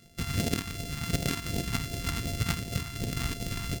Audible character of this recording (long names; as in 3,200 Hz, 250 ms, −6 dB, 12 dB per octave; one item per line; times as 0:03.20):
a buzz of ramps at a fixed pitch in blocks of 64 samples
phaser sweep stages 2, 2.7 Hz, lowest notch 520–1,100 Hz